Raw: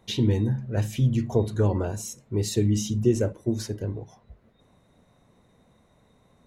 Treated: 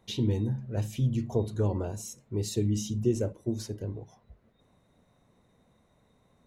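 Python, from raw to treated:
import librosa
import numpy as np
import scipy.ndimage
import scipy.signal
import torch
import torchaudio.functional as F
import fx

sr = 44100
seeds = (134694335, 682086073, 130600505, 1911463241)

y = fx.dynamic_eq(x, sr, hz=1700.0, q=1.8, threshold_db=-52.0, ratio=4.0, max_db=-6)
y = y * 10.0 ** (-5.0 / 20.0)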